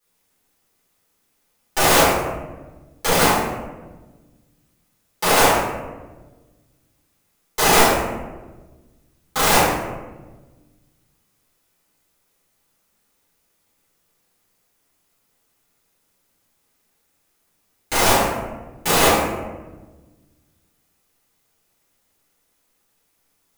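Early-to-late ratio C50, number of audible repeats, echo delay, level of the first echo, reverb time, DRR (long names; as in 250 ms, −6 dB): 0.0 dB, no echo audible, no echo audible, no echo audible, 1.2 s, −12.5 dB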